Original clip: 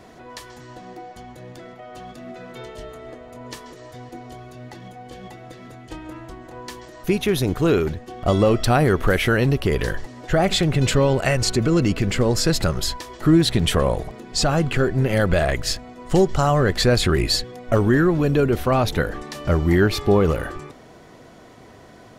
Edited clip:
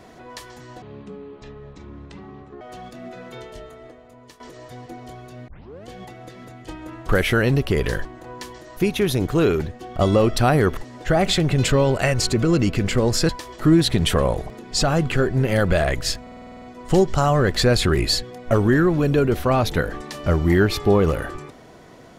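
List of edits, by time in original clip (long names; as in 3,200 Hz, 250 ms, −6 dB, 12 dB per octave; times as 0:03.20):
0:00.82–0:01.84: play speed 57%
0:02.50–0:03.63: fade out, to −14 dB
0:04.71: tape start 0.40 s
0:09.04–0:10.00: move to 0:06.32
0:12.52–0:12.90: remove
0:15.83: stutter 0.05 s, 9 plays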